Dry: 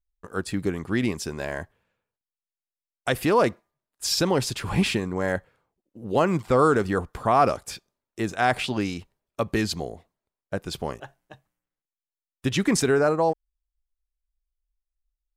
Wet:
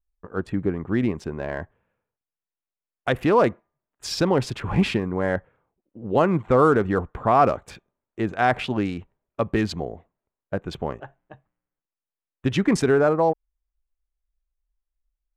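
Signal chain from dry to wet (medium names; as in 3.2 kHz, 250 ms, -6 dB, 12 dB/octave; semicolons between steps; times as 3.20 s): local Wiener filter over 9 samples; low-pass 1.3 kHz 6 dB/octave, from 1.49 s 2.6 kHz; trim +2.5 dB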